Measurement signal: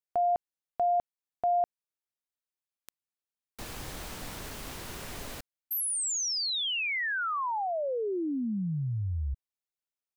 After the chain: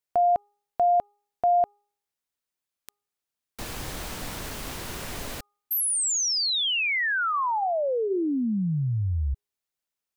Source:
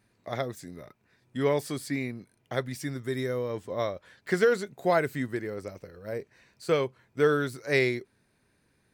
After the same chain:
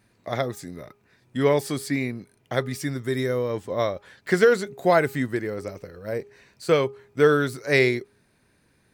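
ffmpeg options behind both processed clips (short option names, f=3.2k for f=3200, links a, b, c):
-af "bandreject=f=409.6:t=h:w=4,bandreject=f=819.2:t=h:w=4,bandreject=f=1.2288k:t=h:w=4,volume=5.5dB"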